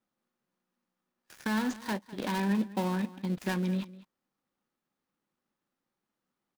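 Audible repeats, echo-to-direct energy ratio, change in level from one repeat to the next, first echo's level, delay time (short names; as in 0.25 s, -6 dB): 1, -18.5 dB, no steady repeat, -18.5 dB, 0.202 s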